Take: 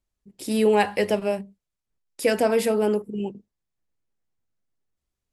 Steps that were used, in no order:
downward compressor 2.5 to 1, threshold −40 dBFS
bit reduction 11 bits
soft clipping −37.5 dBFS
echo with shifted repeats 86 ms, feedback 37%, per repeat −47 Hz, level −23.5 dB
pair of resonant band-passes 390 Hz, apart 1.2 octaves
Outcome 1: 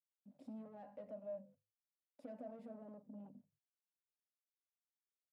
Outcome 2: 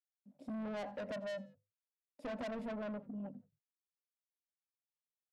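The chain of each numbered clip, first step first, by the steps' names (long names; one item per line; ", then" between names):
bit reduction, then downward compressor, then soft clipping, then pair of resonant band-passes, then echo with shifted repeats
bit reduction, then pair of resonant band-passes, then soft clipping, then echo with shifted repeats, then downward compressor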